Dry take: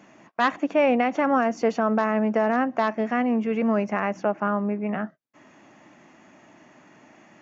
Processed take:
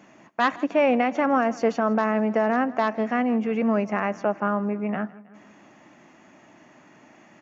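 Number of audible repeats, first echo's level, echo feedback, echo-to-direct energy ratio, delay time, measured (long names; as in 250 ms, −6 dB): 3, −21.0 dB, 57%, −19.5 dB, 160 ms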